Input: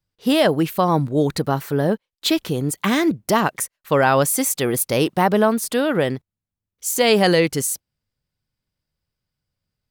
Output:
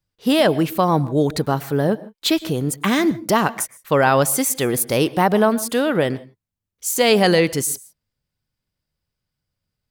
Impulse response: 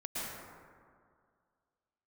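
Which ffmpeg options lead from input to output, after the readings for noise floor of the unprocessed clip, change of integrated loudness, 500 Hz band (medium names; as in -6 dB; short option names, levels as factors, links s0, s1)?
under -85 dBFS, +0.5 dB, +0.5 dB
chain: -filter_complex "[0:a]asplit=2[s0][s1];[1:a]atrim=start_sample=2205,afade=t=out:st=0.22:d=0.01,atrim=end_sample=10143[s2];[s1][s2]afir=irnorm=-1:irlink=0,volume=0.126[s3];[s0][s3]amix=inputs=2:normalize=0"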